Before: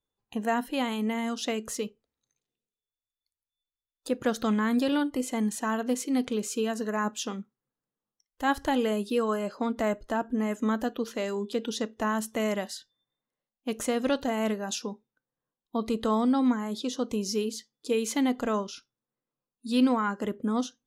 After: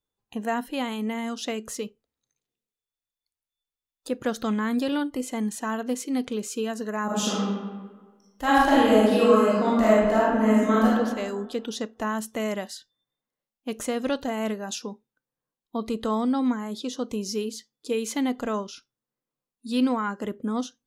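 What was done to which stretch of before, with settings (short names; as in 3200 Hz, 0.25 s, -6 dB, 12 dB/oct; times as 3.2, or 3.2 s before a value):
7.05–10.87 reverb throw, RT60 1.4 s, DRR -8 dB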